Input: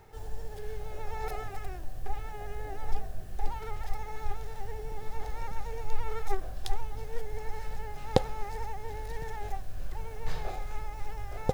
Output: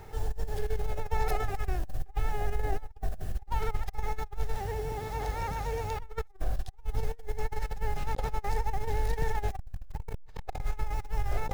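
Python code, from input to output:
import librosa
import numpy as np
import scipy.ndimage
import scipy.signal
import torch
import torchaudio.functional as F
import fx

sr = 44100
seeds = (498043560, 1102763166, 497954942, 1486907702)

y = fx.highpass(x, sr, hz=56.0, slope=12, at=(4.57, 6.0))
y = fx.low_shelf(y, sr, hz=120.0, db=4.0)
y = fx.over_compress(y, sr, threshold_db=-30.0, ratio=-0.5)
y = fx.transformer_sat(y, sr, knee_hz=140.0, at=(9.55, 10.61))
y = y * librosa.db_to_amplitude(2.0)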